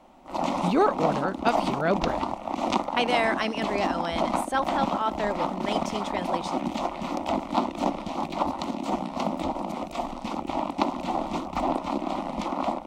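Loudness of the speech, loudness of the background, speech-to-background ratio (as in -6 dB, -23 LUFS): -28.5 LUFS, -29.5 LUFS, 1.0 dB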